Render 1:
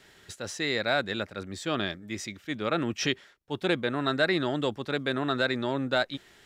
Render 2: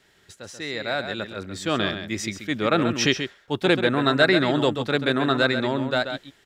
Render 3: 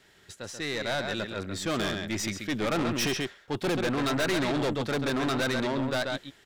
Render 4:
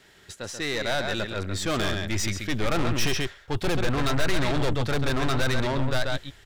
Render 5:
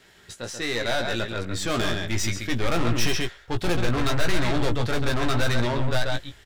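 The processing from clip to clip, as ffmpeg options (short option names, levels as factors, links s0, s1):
-filter_complex "[0:a]dynaudnorm=f=560:g=5:m=5.01,asplit=2[s0][s1];[s1]adelay=134.1,volume=0.398,highshelf=f=4000:g=-3.02[s2];[s0][s2]amix=inputs=2:normalize=0,volume=0.631"
-af "aeval=exprs='(tanh(20*val(0)+0.35)-tanh(0.35))/20':c=same,volume=1.19"
-filter_complex "[0:a]asubboost=boost=8:cutoff=84,asplit=2[s0][s1];[s1]asoftclip=type=hard:threshold=0.0473,volume=0.631[s2];[s0][s2]amix=inputs=2:normalize=0"
-filter_complex "[0:a]asplit=2[s0][s1];[s1]adelay=17,volume=0.501[s2];[s0][s2]amix=inputs=2:normalize=0"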